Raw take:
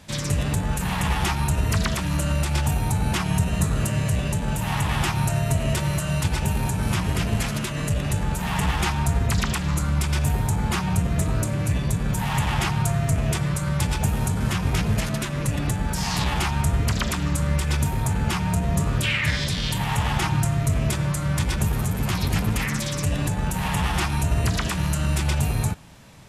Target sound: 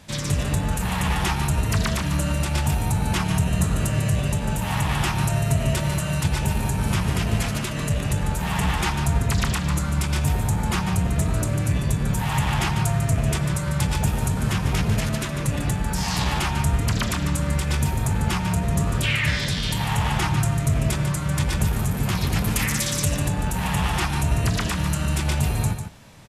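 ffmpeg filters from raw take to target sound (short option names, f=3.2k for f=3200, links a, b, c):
-filter_complex "[0:a]asettb=1/sr,asplit=3[a][b][c];[a]atrim=end=22.444[d];[b]atrim=start=22.44:end=23.13,asetpts=PTS-STARTPTS,afade=t=in:d=0.004:c=qsin,afade=t=out:st=0.686:d=0.004:c=qsin,highshelf=f=4.7k:g=9[e];[c]atrim=start=23.126[f];[d][e]acrossfade=d=0.004:c1=hsin:c2=qsin[g];[g][f]acrossfade=d=0.004:c1=qsin:c2=hsin,aecho=1:1:147:0.376"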